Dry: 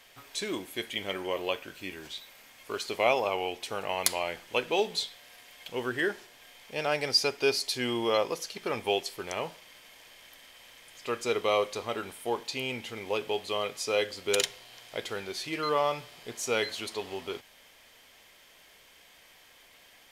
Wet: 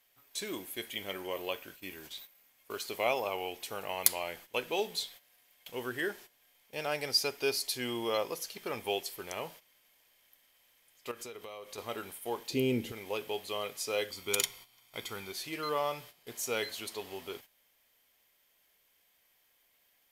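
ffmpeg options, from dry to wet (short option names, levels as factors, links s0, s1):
-filter_complex "[0:a]asettb=1/sr,asplit=3[s0][s1][s2];[s0]atrim=end=11.114[s3];[s1]atrim=start=11.11:end=11.78,asetpts=PTS-STARTPTS,afade=t=in:d=0.004:c=qsin,afade=t=out:st=0.666:d=0.004:c=qsin,acompressor=threshold=0.0141:ratio=6:attack=3.2:release=140:knee=1:detection=peak[s4];[s2]atrim=start=11.776[s5];[s3][s4]acrossfade=d=0.004:c1=hsin:c2=qsin[s6];[s6][s5]acrossfade=d=0.004:c1=qsin:c2=hsin,asettb=1/sr,asplit=3[s7][s8][s9];[s7]atrim=end=12.504[s10];[s8]atrim=start=12.5:end=12.92,asetpts=PTS-STARTPTS,afade=t=in:d=0.004:c=qsin,afade=t=out:st=0.416:d=0.004:c=qsin,lowshelf=f=550:t=q:w=1.5:g=12.5[s11];[s9]atrim=start=12.916[s12];[s10][s11]acrossfade=d=0.004:c1=hsin:c2=qsin[s13];[s13][s12]acrossfade=d=0.004:c1=qsin:c2=hsin,asettb=1/sr,asplit=3[s14][s15][s16];[s14]atrim=end=14.104[s17];[s15]atrim=start=14.1:end=15.32,asetpts=PTS-STARTPTS,afade=t=in:d=0.004:c=qsin,afade=t=out:st=1.216:d=0.004:c=qsin,aecho=1:1:0.9:0.51,atrim=end_sample=53802[s18];[s16]atrim=start=15.316[s19];[s17][s18]acrossfade=d=0.004:c1=hsin:c2=qsin[s20];[s20][s19]acrossfade=d=0.004:c1=qsin:c2=hsin,agate=range=0.251:threshold=0.00501:ratio=16:detection=peak,equalizer=f=14000:w=0.86:g=15,volume=0.531"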